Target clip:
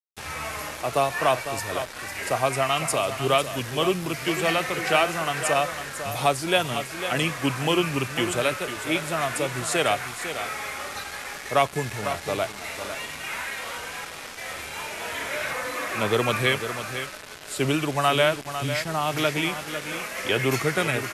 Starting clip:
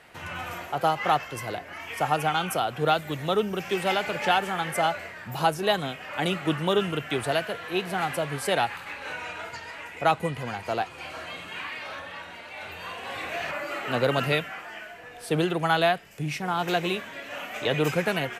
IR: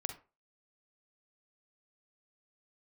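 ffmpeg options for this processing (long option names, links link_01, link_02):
-af "highshelf=frequency=2300:gain=7,aecho=1:1:436:0.316,acrusher=bits=5:mix=0:aa=0.000001,aresample=32000,aresample=44100,asetrate=38367,aresample=44100"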